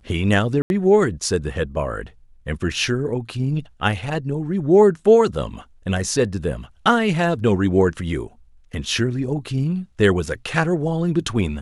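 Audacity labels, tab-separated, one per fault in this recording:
0.620000	0.700000	drop-out 81 ms

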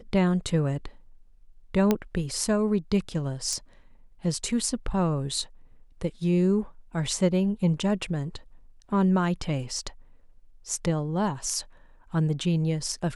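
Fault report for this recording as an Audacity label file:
1.910000	1.910000	click −9 dBFS
3.530000	3.530000	click −18 dBFS

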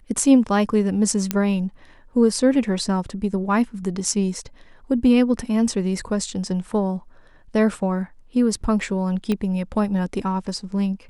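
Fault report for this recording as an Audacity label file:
1.310000	1.310000	click −5 dBFS
9.320000	9.320000	click −12 dBFS

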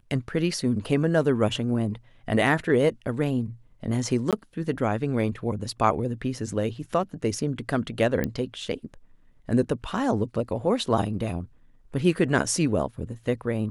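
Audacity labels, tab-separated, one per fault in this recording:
4.310000	4.330000	drop-out 17 ms
8.240000	8.240000	click −13 dBFS

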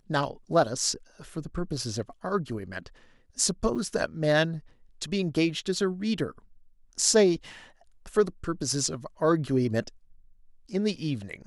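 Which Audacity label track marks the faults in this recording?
3.750000	3.760000	drop-out 6.1 ms
6.190000	6.190000	drop-out 3.2 ms

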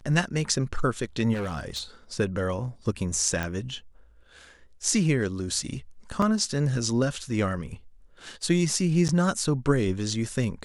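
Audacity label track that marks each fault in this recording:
1.330000	1.830000	clipping −27 dBFS
3.430000	3.430000	click
6.220000	6.220000	drop-out 3.5 ms
9.080000	9.090000	drop-out 9.3 ms

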